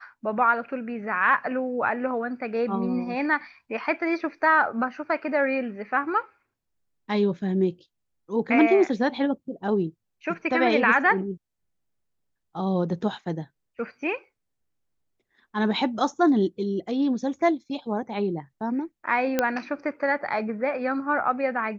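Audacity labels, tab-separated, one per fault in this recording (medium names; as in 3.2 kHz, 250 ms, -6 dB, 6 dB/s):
19.390000	19.390000	pop -8 dBFS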